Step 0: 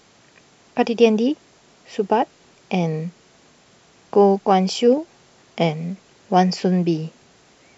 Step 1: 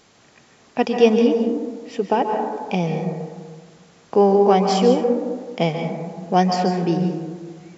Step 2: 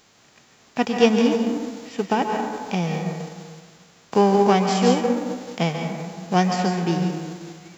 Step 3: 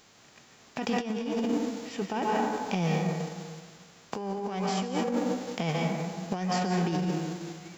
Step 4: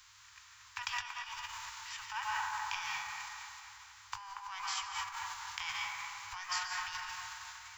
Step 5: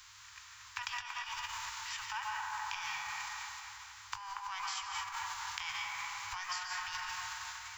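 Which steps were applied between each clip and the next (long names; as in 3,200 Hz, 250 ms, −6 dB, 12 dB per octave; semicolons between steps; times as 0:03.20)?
convolution reverb RT60 1.6 s, pre-delay 122 ms, DRR 3.5 dB; level −1 dB
spectral envelope flattened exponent 0.6; dynamic equaliser 4,700 Hz, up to −4 dB, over −40 dBFS, Q 0.83; level −2 dB
compressor whose output falls as the input rises −24 dBFS, ratio −1; level −5 dB
Chebyshev band-stop filter 100–940 Hz, order 5; delay with a band-pass on its return 233 ms, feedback 50%, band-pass 1,100 Hz, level −5 dB
downward compressor, threshold −40 dBFS, peak gain reduction 8.5 dB; level +4 dB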